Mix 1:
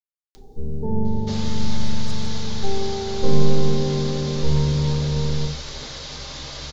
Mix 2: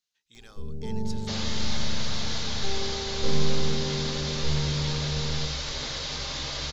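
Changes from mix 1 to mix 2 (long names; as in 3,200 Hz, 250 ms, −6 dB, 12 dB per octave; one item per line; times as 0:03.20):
speech: entry −1.00 s
first sound −8.5 dB
second sound: add parametric band 2,500 Hz +3 dB 2.2 octaves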